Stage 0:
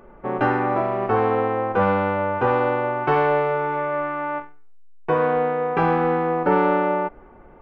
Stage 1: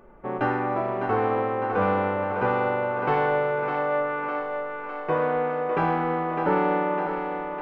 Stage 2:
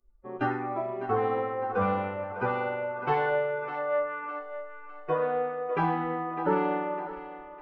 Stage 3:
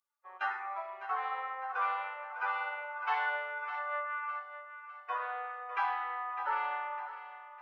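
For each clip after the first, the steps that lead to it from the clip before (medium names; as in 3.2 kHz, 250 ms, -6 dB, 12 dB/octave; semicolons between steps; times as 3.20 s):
thinning echo 605 ms, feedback 66%, high-pass 220 Hz, level -6.5 dB; trim -4.5 dB
expander on every frequency bin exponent 2
high-pass 930 Hz 24 dB/octave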